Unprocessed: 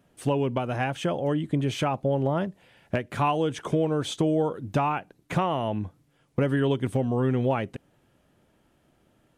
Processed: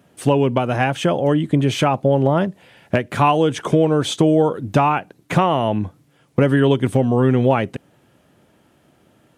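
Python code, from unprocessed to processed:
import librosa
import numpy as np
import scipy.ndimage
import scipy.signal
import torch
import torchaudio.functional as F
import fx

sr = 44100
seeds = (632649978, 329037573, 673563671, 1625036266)

y = scipy.signal.sosfilt(scipy.signal.butter(2, 85.0, 'highpass', fs=sr, output='sos'), x)
y = y * 10.0 ** (9.0 / 20.0)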